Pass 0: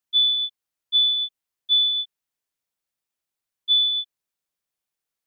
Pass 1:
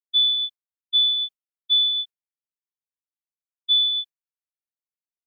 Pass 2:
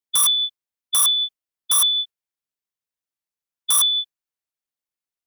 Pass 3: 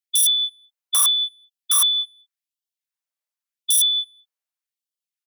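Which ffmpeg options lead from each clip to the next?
ffmpeg -i in.wav -af "agate=range=-33dB:threshold=-29dB:ratio=3:detection=peak" out.wav
ffmpeg -i in.wav -af "aeval=exprs='(mod(6.31*val(0)+1,2)-1)/6.31':channel_layout=same,volume=3dB" out.wav
ffmpeg -i in.wav -filter_complex "[0:a]asplit=2[link_01][link_02];[link_02]adelay=210,highpass=300,lowpass=3400,asoftclip=type=hard:threshold=-22.5dB,volume=-28dB[link_03];[link_01][link_03]amix=inputs=2:normalize=0,afftfilt=real='re*gte(b*sr/1024,420*pow(2800/420,0.5+0.5*sin(2*PI*0.86*pts/sr)))':imag='im*gte(b*sr/1024,420*pow(2800/420,0.5+0.5*sin(2*PI*0.86*pts/sr)))':win_size=1024:overlap=0.75" out.wav

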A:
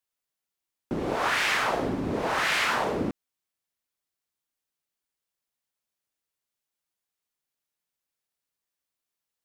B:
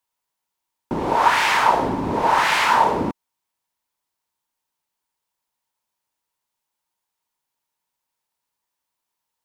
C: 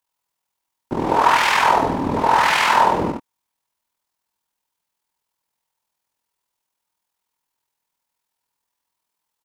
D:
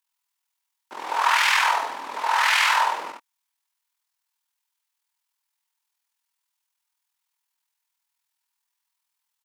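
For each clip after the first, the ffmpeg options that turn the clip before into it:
ffmpeg -i in.wav -af "equalizer=frequency=930:width=4.4:gain=14,volume=4.5dB" out.wav
ffmpeg -i in.wav -filter_complex "[0:a]tremolo=f=41:d=0.71,asplit=2[link_01][link_02];[link_02]aecho=0:1:66|88:0.668|0.266[link_03];[link_01][link_03]amix=inputs=2:normalize=0,volume=3dB" out.wav
ffmpeg -i in.wav -af "highpass=1300" out.wav

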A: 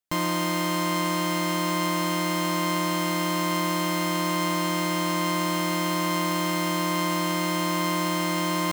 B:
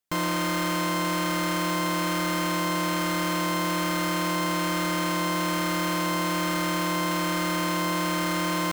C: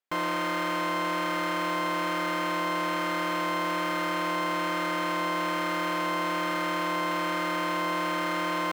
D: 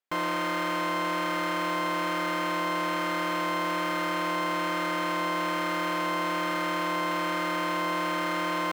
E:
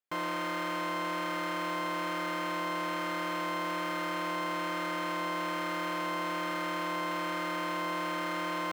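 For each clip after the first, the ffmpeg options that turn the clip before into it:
ffmpeg -i in.wav -af "asoftclip=type=hard:threshold=-27dB,volume=3dB" out.wav
ffmpeg -i in.wav -af "bass=frequency=250:gain=-13,treble=frequency=4000:gain=-12" out.wav
ffmpeg -i in.wav -af anull out.wav
ffmpeg -i in.wav -af "highpass=44,volume=-5dB" out.wav

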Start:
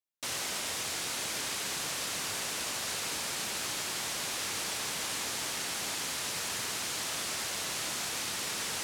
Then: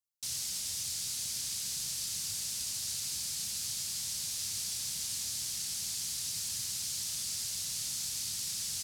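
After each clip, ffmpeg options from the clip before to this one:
ffmpeg -i in.wav -af "firequalizer=gain_entry='entry(100,0);entry(350,-22);entry(1100,-21);entry(4700,1)':delay=0.05:min_phase=1" out.wav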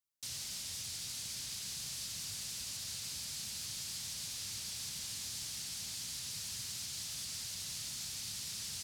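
ffmpeg -i in.wav -filter_complex "[0:a]acrossover=split=700|4200[link_01][link_02][link_03];[link_03]alimiter=level_in=11.5dB:limit=-24dB:level=0:latency=1:release=123,volume=-11.5dB[link_04];[link_01][link_02][link_04]amix=inputs=3:normalize=0,asoftclip=type=tanh:threshold=-31.5dB" out.wav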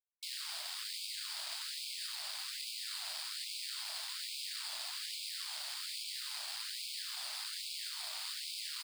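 ffmpeg -i in.wav -af "aresample=11025,aresample=44100,acrusher=bits=6:dc=4:mix=0:aa=0.000001,afftfilt=real='re*gte(b*sr/1024,560*pow(2200/560,0.5+0.5*sin(2*PI*1.2*pts/sr)))':imag='im*gte(b*sr/1024,560*pow(2200/560,0.5+0.5*sin(2*PI*1.2*pts/sr)))':win_size=1024:overlap=0.75,volume=9dB" out.wav

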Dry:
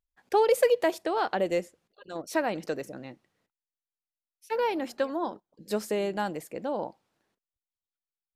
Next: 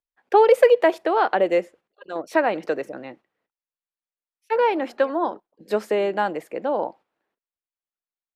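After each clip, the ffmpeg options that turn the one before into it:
ffmpeg -i in.wav -filter_complex "[0:a]agate=range=-9dB:threshold=-52dB:ratio=16:detection=peak,acrossover=split=280 3100:gain=0.224 1 0.178[link_01][link_02][link_03];[link_01][link_02][link_03]amix=inputs=3:normalize=0,volume=8.5dB" out.wav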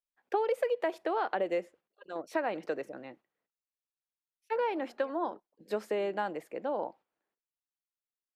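ffmpeg -i in.wav -af "acompressor=threshold=-17dB:ratio=6,volume=-9dB" out.wav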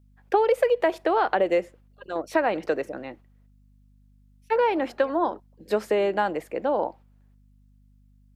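ffmpeg -i in.wav -af "aeval=exprs='val(0)+0.000562*(sin(2*PI*50*n/s)+sin(2*PI*2*50*n/s)/2+sin(2*PI*3*50*n/s)/3+sin(2*PI*4*50*n/s)/4+sin(2*PI*5*50*n/s)/5)':channel_layout=same,volume=9dB" out.wav

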